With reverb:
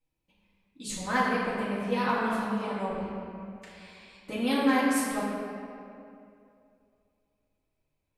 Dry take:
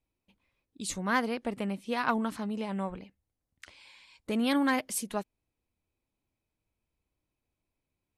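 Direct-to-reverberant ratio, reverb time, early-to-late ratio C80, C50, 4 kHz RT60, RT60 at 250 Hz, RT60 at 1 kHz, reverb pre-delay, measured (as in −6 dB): −10.0 dB, 2.6 s, 0.0 dB, −1.5 dB, 1.5 s, 2.6 s, 2.4 s, 4 ms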